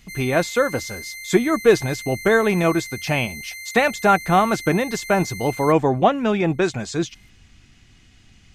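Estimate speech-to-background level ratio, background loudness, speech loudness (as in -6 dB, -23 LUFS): 13.0 dB, -33.0 LUFS, -20.0 LUFS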